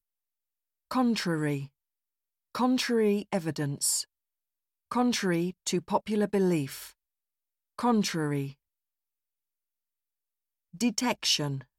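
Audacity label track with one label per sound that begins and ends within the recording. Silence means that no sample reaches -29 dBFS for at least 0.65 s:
0.910000	1.590000	sound
2.550000	4.010000	sound
4.920000	6.660000	sound
7.790000	8.460000	sound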